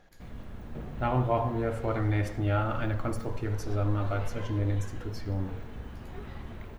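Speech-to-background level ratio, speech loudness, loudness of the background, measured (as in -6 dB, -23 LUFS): 13.0 dB, -31.0 LUFS, -44.0 LUFS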